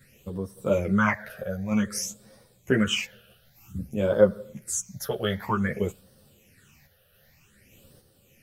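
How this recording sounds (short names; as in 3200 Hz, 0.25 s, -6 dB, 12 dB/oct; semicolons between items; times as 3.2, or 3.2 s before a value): phasing stages 8, 0.53 Hz, lowest notch 280–2300 Hz; random-step tremolo; a shimmering, thickened sound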